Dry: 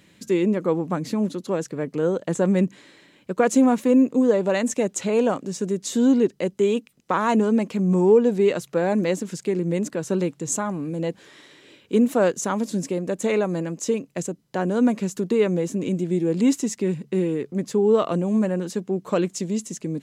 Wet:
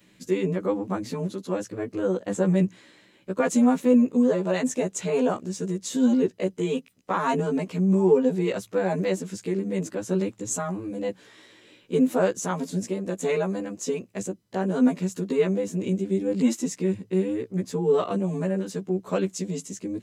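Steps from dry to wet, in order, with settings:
every overlapping window played backwards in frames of 32 ms

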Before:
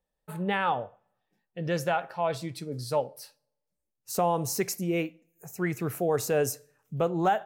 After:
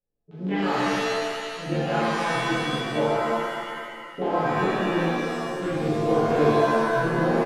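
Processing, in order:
adaptive Wiener filter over 41 samples
treble cut that deepens with the level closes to 2,000 Hz, closed at −25 dBFS
comb filter 7 ms, depth 36%
auto-filter low-pass square 6.4 Hz 370–3,300 Hz
chorus effect 0.33 Hz, delay 19 ms, depth 7.4 ms
reverb with rising layers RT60 1.9 s, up +7 semitones, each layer −2 dB, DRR −10.5 dB
level −5 dB

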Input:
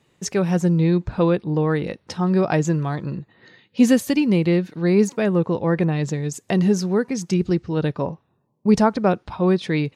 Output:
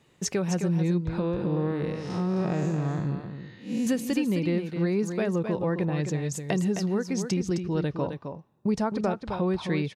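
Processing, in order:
0:01.19–0:03.87: spectrum smeared in time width 194 ms
downward compressor 3 to 1, threshold −26 dBFS, peak gain reduction 12 dB
single-tap delay 262 ms −7.5 dB

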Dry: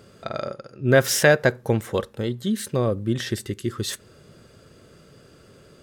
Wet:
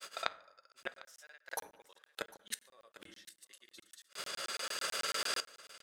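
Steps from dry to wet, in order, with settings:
camcorder AGC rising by 6.3 dB per second
high-pass filter 820 Hz 12 dB per octave
noise gate with hold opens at −46 dBFS
tilt shelving filter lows −4.5 dB, about 1,100 Hz
reversed playback
downward compressor 10 to 1, threshold −32 dBFS, peak gain reduction 19 dB
reversed playback
transient designer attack +4 dB, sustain −9 dB
granular cloud 100 ms, grains 20 per second, pitch spread up and down by 0 semitones
gate with flip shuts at −32 dBFS, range −36 dB
single-tap delay 751 ms −19 dB
on a send at −13.5 dB: convolution reverb RT60 0.70 s, pre-delay 3 ms
on the sum: regular buffer underruns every 0.11 s, samples 1,024, zero, from 0:00.72
one half of a high-frequency compander encoder only
level +9.5 dB

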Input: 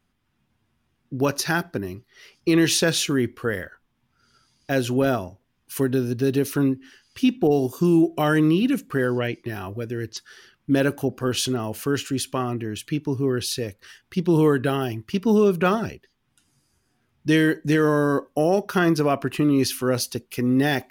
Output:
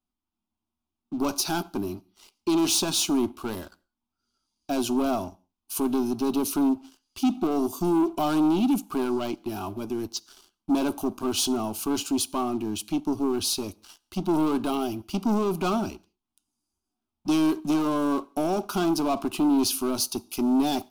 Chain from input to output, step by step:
downsampling to 32,000 Hz
leveller curve on the samples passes 3
phaser with its sweep stopped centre 490 Hz, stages 6
on a send: convolution reverb, pre-delay 3 ms, DRR 21.5 dB
on the sum: level −7.5 dB

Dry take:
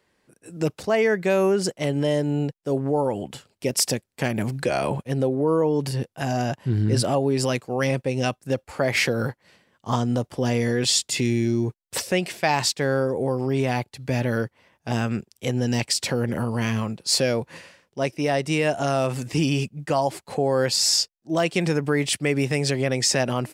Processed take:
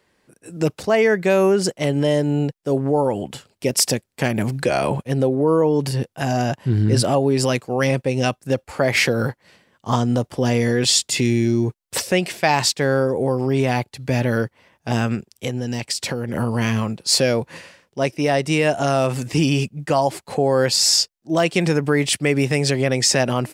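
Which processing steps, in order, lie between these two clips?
0:15.14–0:16.34: downward compressor, threshold −25 dBFS, peak gain reduction 7 dB
level +4 dB

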